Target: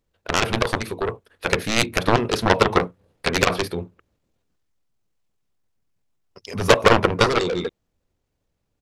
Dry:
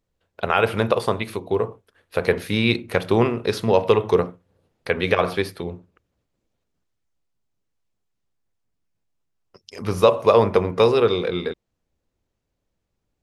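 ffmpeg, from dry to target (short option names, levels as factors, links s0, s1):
-af "aeval=exprs='0.794*(cos(1*acos(clip(val(0)/0.794,-1,1)))-cos(1*PI/2))+0.282*(cos(7*acos(clip(val(0)/0.794,-1,1)))-cos(7*PI/2))':c=same,dynaudnorm=f=280:g=17:m=3.76,atempo=1.5,volume=0.891"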